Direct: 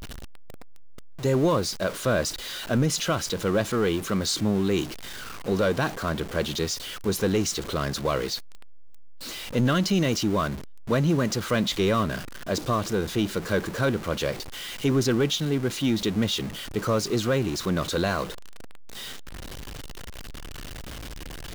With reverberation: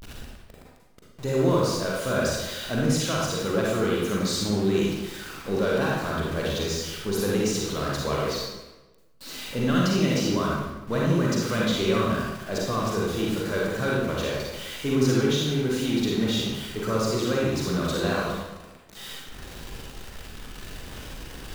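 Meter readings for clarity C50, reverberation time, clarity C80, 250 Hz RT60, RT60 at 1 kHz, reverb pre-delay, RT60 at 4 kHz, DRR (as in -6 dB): -2.5 dB, 1.1 s, 2.0 dB, 1.1 s, 1.1 s, 37 ms, 0.85 s, -4.5 dB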